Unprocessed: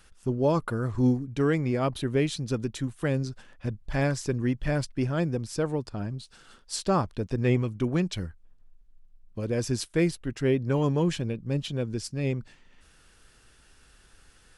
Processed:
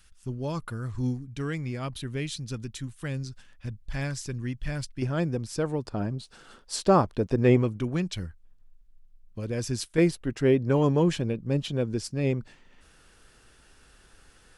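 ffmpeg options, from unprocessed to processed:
ffmpeg -i in.wav -af "asetnsamples=nb_out_samples=441:pad=0,asendcmd='5.02 equalizer g -0.5;5.85 equalizer g 6;7.81 equalizer g -4;9.98 equalizer g 3.5',equalizer=frequency=510:width_type=o:width=2.9:gain=-11" out.wav

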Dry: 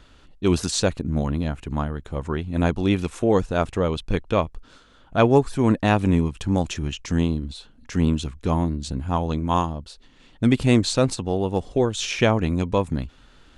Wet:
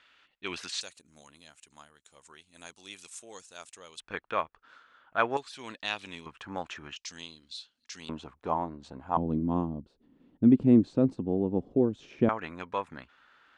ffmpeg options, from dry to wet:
ffmpeg -i in.wav -af "asetnsamples=nb_out_samples=441:pad=0,asendcmd='0.81 bandpass f 7900;4 bandpass f 1500;5.37 bandpass f 3800;6.26 bandpass f 1400;6.96 bandpass f 4700;8.09 bandpass f 880;9.17 bandpass f 260;12.29 bandpass f 1500',bandpass=frequency=2200:width_type=q:width=1.6:csg=0" out.wav

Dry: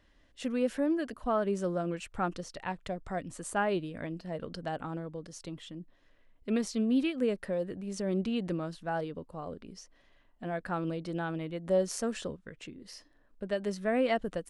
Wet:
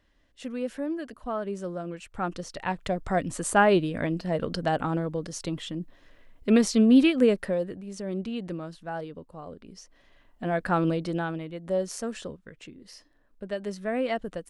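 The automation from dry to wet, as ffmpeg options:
ffmpeg -i in.wav -af "volume=20.5dB,afade=type=in:start_time=2.04:duration=1.17:silence=0.251189,afade=type=out:start_time=7.15:duration=0.68:silence=0.281838,afade=type=in:start_time=9.59:duration=1.23:silence=0.298538,afade=type=out:start_time=10.82:duration=0.63:silence=0.334965" out.wav

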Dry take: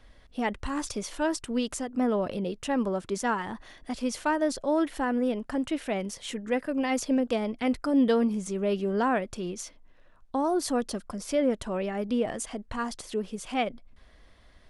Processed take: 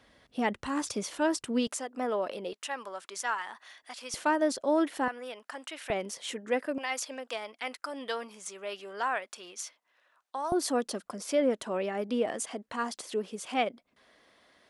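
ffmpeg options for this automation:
ffmpeg -i in.wav -af "asetnsamples=nb_out_samples=441:pad=0,asendcmd='1.67 highpass f 470;2.53 highpass f 1000;4.14 highpass f 240;5.08 highpass f 960;5.9 highpass f 320;6.78 highpass f 920;10.52 highpass f 270',highpass=130" out.wav

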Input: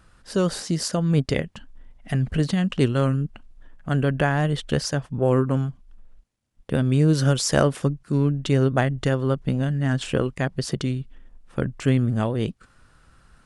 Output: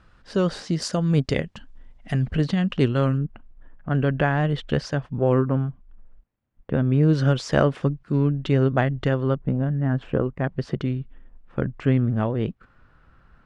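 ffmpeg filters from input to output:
ffmpeg -i in.wav -af "asetnsamples=nb_out_samples=441:pad=0,asendcmd='0.82 lowpass f 6800;2.26 lowpass f 4300;3.18 lowpass f 1900;3.95 lowpass f 3400;5.48 lowpass f 1900;7.03 lowpass f 3200;9.35 lowpass f 1300;10.44 lowpass f 2300',lowpass=4200" out.wav

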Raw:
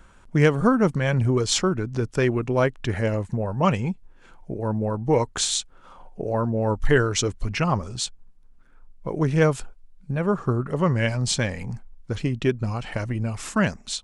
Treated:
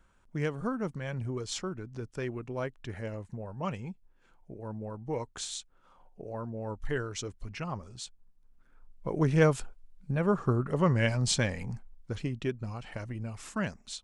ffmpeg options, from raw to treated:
ffmpeg -i in.wav -af "volume=-4dB,afade=type=in:start_time=8.05:duration=1.11:silence=0.316228,afade=type=out:start_time=11.39:duration=1.17:silence=0.446684" out.wav

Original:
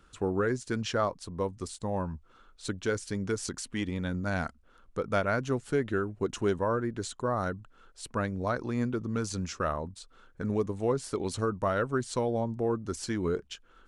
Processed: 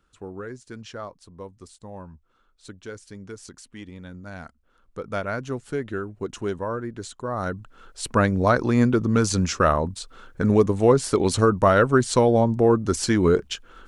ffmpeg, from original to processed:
ffmpeg -i in.wav -af "volume=11.5dB,afade=type=in:start_time=4.39:duration=0.85:silence=0.421697,afade=type=in:start_time=7.28:duration=0.82:silence=0.266073" out.wav

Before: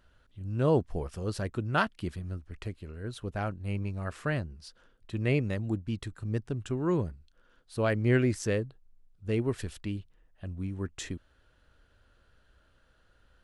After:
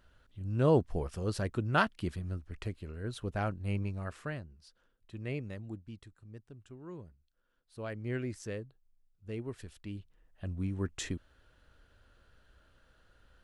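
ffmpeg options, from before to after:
ffmpeg -i in.wav -af "volume=18dB,afade=type=out:start_time=3.75:duration=0.64:silence=0.316228,afade=type=out:start_time=5.61:duration=0.61:silence=0.421697,afade=type=in:start_time=7.03:duration=1.34:silence=0.421697,afade=type=in:start_time=9.79:duration=0.68:silence=0.281838" out.wav

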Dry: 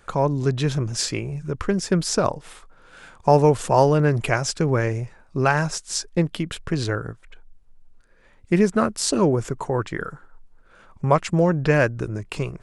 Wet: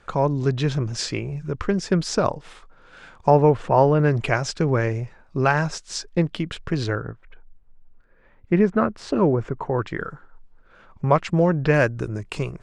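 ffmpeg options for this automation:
ffmpeg -i in.wav -af "asetnsamples=nb_out_samples=441:pad=0,asendcmd='3.3 lowpass f 2400;4 lowpass f 5400;7.01 lowpass f 2200;9.79 lowpass f 4600;11.74 lowpass f 9500',lowpass=5600" out.wav

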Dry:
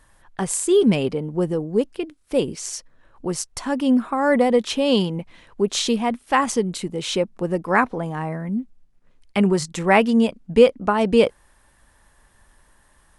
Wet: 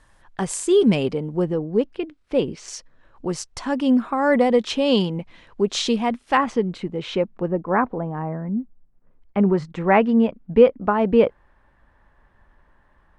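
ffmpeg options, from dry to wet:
ffmpeg -i in.wav -af "asetnsamples=nb_out_samples=441:pad=0,asendcmd='1.42 lowpass f 3600;2.68 lowpass f 6100;6.37 lowpass f 2600;7.48 lowpass f 1200;9.49 lowpass f 1900',lowpass=7500" out.wav

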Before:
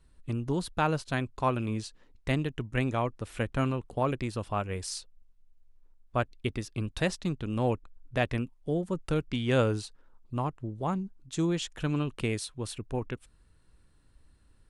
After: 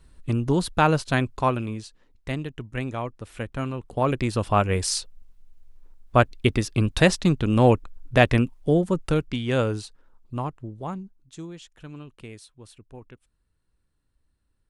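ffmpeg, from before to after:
ffmpeg -i in.wav -af "volume=20dB,afade=type=out:start_time=1.25:duration=0.52:silence=0.354813,afade=type=in:start_time=3.71:duration=0.88:silence=0.251189,afade=type=out:start_time=8.57:duration=0.86:silence=0.354813,afade=type=out:start_time=10.39:duration=1.1:silence=0.223872" out.wav

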